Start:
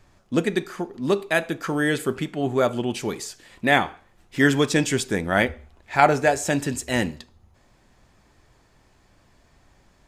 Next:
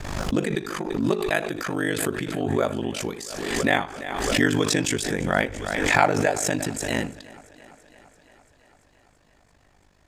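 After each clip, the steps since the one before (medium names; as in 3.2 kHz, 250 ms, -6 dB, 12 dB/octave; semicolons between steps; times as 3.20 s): ring modulator 25 Hz; thinning echo 338 ms, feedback 71%, high-pass 160 Hz, level -20.5 dB; swell ahead of each attack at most 39 dB/s; trim -1.5 dB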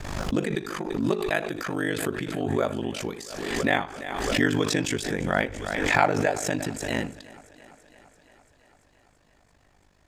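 dynamic bell 9.4 kHz, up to -5 dB, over -42 dBFS, Q 0.76; trim -2 dB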